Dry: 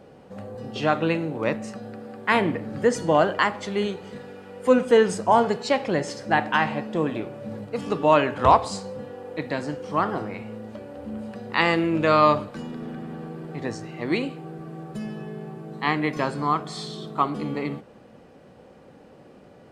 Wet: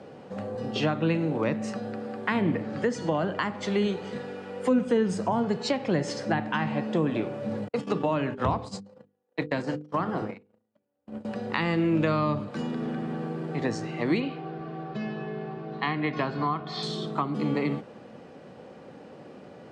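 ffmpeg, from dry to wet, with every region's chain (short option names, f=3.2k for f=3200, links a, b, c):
-filter_complex "[0:a]asettb=1/sr,asplit=3[a][b][c];[a]atrim=end=2.624[d];[b]atrim=start=2.62:end=3.23,asetpts=PTS-STARTPTS,afade=t=in:d=0.004:c=qsin,afade=t=out:st=0.606:d=0.004:c=qsin,lowpass=7.7k,lowshelf=f=450:g=-5[e];[c]atrim=start=3.226[f];[d][e]acrossfade=d=0.004:c1=hsin:c2=qsin[g];[g][f]acrossfade=d=0.004:c1=qsin:c2=hsin,asettb=1/sr,asplit=3[h][i][j];[h]atrim=end=7.684[k];[i]atrim=start=7.68:end=11.25,asetpts=PTS-STARTPTS,afade=t=in:d=0.004:c=qsin,afade=t=out:st=3.566:d=0.004:c=qsin,agate=range=-45dB:threshold=-32dB:ratio=16:release=100:detection=peak,bandreject=f=50:t=h:w=6,bandreject=f=100:t=h:w=6,bandreject=f=150:t=h:w=6,bandreject=f=200:t=h:w=6,bandreject=f=250:t=h:w=6,bandreject=f=300:t=h:w=6,bandreject=f=350:t=h:w=6,bandreject=f=400:t=h:w=6,bandreject=f=450:t=h:w=6,bandreject=f=500:t=h:w=6[l];[j]atrim=start=11.246[m];[k][l]acrossfade=d=0.004:c1=hsin:c2=qsin[n];[n][m]acrossfade=d=0.004:c1=qsin:c2=hsin,asettb=1/sr,asplit=3[o][p][q];[o]atrim=end=14.204[r];[p]atrim=start=14.2:end=16.83,asetpts=PTS-STARTPTS,afade=t=in:d=0.004:c=qsin,afade=t=out:st=2.626:d=0.004:c=qsin,lowpass=f=4.6k:w=0.5412,lowpass=f=4.6k:w=1.3066,equalizer=f=330:w=2:g=-5.5,aecho=1:1:2.8:0.38,atrim=end_sample=115983[s];[q]atrim=start=16.826[t];[r][s]acrossfade=d=0.004:c1=hsin:c2=qsin[u];[u][t]acrossfade=d=0.004:c1=qsin:c2=hsin,highpass=110,acrossover=split=250[v][w];[w]acompressor=threshold=-29dB:ratio=10[x];[v][x]amix=inputs=2:normalize=0,lowpass=7.4k,volume=3.5dB"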